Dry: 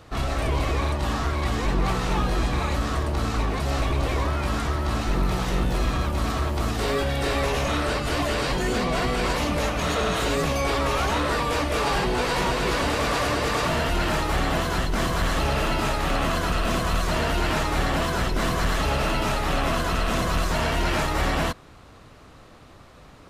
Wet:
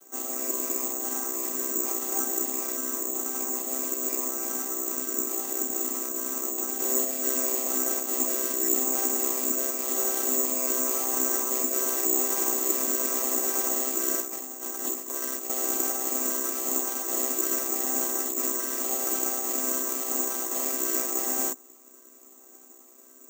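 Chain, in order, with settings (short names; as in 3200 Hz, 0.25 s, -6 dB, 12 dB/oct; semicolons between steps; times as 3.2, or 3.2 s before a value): chord vocoder major triad, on C4; 14.21–15.5 negative-ratio compressor -31 dBFS, ratio -0.5; careless resampling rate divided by 6×, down none, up zero stuff; gain -9 dB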